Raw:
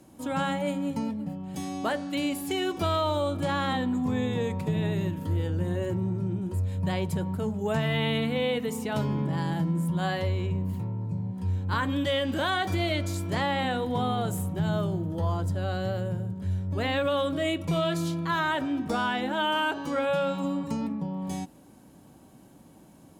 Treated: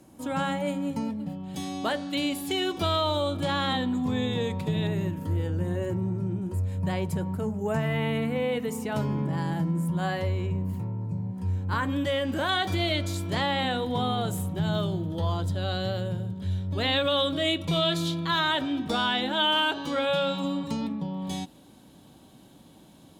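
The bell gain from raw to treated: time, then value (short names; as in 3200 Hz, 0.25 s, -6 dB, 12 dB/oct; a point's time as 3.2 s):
bell 3600 Hz 0.61 oct
0 dB
from 1.2 s +7.5 dB
from 4.87 s -4 dB
from 7.41 s -12 dB
from 8.52 s -4 dB
from 12.49 s +6.5 dB
from 14.75 s +12.5 dB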